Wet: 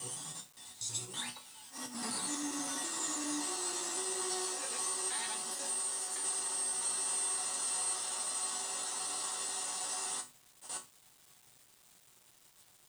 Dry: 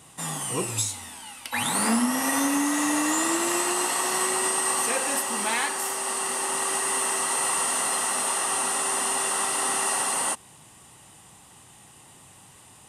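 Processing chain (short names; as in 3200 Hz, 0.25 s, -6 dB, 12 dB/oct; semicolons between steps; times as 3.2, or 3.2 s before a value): slices in reverse order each 81 ms, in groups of 7; HPF 48 Hz; high shelf 4100 Hz -9 dB; auto swell 0.122 s; band shelf 5700 Hz +14 dB; notches 50/100/150/200/250 Hz; resonator bank B2 minor, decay 0.23 s; bit-crush 9-bit; gain -3 dB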